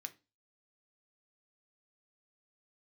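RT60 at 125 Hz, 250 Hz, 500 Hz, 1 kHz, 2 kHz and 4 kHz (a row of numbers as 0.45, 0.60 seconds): 0.40, 0.35, 0.30, 0.25, 0.25, 0.30 seconds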